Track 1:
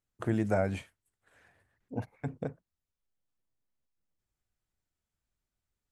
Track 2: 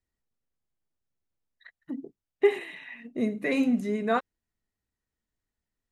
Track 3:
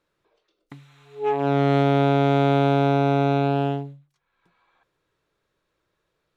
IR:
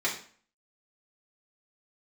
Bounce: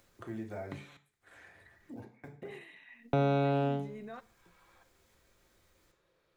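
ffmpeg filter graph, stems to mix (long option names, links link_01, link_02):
-filter_complex "[0:a]acrusher=bits=8:mode=log:mix=0:aa=0.000001,acompressor=mode=upward:threshold=-32dB:ratio=2.5,volume=-16dB,asplit=2[link_01][link_02];[link_02]volume=-5dB[link_03];[1:a]alimiter=limit=-22dB:level=0:latency=1,volume=-13dB,asplit=2[link_04][link_05];[link_05]volume=-23.5dB[link_06];[2:a]equalizer=frequency=530:width=6.7:gain=7.5,volume=-2dB,asplit=3[link_07][link_08][link_09];[link_07]atrim=end=0.97,asetpts=PTS-STARTPTS,afade=type=out:start_time=0.966:duration=0.004:curve=hsin[link_10];[link_08]atrim=start=0.97:end=3.13,asetpts=PTS-STARTPTS,volume=0[link_11];[link_09]atrim=start=3.13,asetpts=PTS-STARTPTS,afade=type=in:duration=0.004:curve=hsin[link_12];[link_10][link_11][link_12]concat=n=3:v=0:a=1,asplit=2[link_13][link_14];[link_14]volume=-14.5dB[link_15];[link_01][link_04]amix=inputs=2:normalize=0,alimiter=level_in=13.5dB:limit=-24dB:level=0:latency=1:release=24,volume=-13.5dB,volume=0dB[link_16];[3:a]atrim=start_sample=2205[link_17];[link_03][link_06][link_15]amix=inputs=3:normalize=0[link_18];[link_18][link_17]afir=irnorm=-1:irlink=0[link_19];[link_13][link_16][link_19]amix=inputs=3:normalize=0,acrossover=split=160[link_20][link_21];[link_21]acompressor=threshold=-42dB:ratio=1.5[link_22];[link_20][link_22]amix=inputs=2:normalize=0"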